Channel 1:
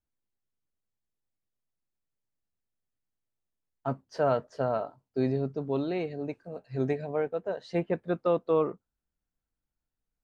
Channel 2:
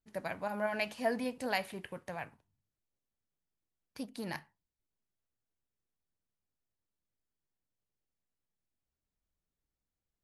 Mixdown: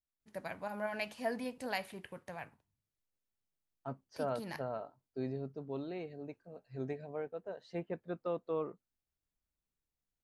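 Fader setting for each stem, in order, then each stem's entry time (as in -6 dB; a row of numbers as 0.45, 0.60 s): -11.0, -4.0 dB; 0.00, 0.20 s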